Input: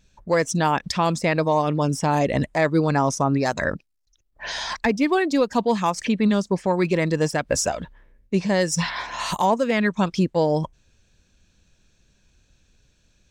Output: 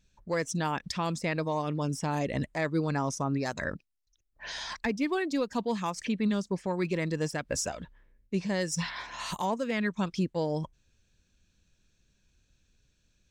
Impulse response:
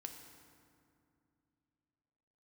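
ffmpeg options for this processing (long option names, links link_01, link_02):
-af "equalizer=frequency=720:width=1.1:gain=-4,volume=-8dB"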